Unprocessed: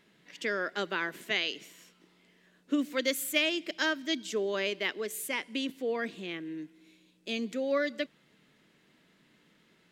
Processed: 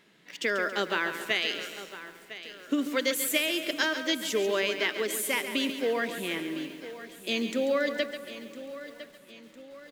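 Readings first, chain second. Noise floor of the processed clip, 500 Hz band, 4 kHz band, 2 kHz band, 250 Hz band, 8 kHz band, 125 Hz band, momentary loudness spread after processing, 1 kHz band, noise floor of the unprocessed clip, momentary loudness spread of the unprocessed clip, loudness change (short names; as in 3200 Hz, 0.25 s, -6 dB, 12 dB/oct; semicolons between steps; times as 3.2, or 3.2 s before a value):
-54 dBFS, +3.5 dB, +3.5 dB, +3.5 dB, +2.5 dB, +6.0 dB, +2.5 dB, 16 LU, +4.0 dB, -66 dBFS, 10 LU, +3.0 dB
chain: in parallel at -11.5 dB: requantised 8-bit, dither none; on the sum: low shelf 180 Hz -7 dB; dark delay 0.153 s, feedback 78%, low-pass 1400 Hz, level -22.5 dB; compressor, threshold -27 dBFS, peak gain reduction 7.5 dB; on a send: feedback echo 1.006 s, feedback 47%, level -14.5 dB; on the sum: lo-fi delay 0.139 s, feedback 55%, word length 9-bit, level -9.5 dB; gain +4 dB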